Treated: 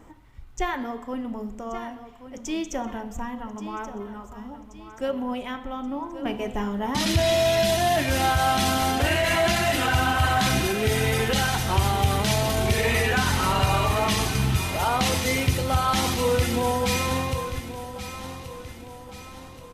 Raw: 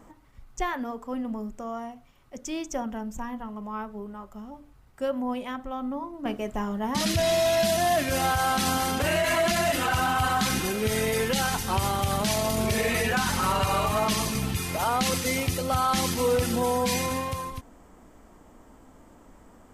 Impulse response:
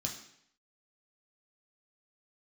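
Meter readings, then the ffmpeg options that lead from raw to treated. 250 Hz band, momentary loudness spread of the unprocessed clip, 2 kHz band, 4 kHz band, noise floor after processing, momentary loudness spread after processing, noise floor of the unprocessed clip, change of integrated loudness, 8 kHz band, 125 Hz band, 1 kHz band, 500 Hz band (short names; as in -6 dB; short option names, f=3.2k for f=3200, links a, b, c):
+1.5 dB, 12 LU, +3.5 dB, +3.5 dB, -44 dBFS, 17 LU, -54 dBFS, +2.5 dB, +0.5 dB, +6.0 dB, +2.0 dB, +1.5 dB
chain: -filter_complex "[0:a]aecho=1:1:1129|2258|3387|4516|5645:0.237|0.111|0.0524|0.0246|0.0116,asplit=2[a][b];[1:a]atrim=start_sample=2205,asetrate=26019,aresample=44100,lowpass=7.7k[c];[b][c]afir=irnorm=-1:irlink=0,volume=-11dB[d];[a][d]amix=inputs=2:normalize=0"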